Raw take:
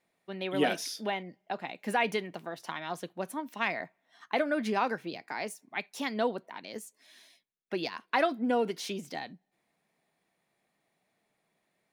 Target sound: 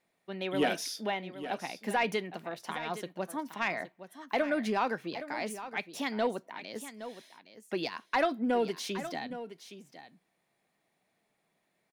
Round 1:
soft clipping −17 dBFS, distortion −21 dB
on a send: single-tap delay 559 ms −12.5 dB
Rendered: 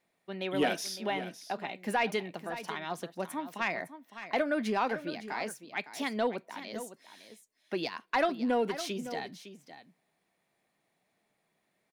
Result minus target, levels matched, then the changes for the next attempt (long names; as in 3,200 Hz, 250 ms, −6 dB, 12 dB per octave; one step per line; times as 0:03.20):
echo 258 ms early
change: single-tap delay 817 ms −12.5 dB